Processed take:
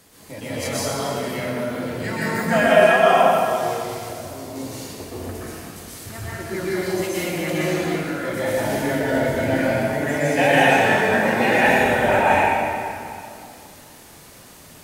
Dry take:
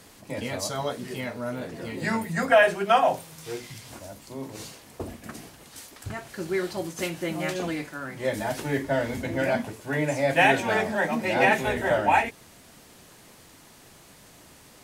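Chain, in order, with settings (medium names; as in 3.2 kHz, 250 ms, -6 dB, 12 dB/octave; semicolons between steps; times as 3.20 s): treble shelf 11 kHz +7.5 dB; reverberation RT60 2.5 s, pre-delay 114 ms, DRR -9 dB; trim -3.5 dB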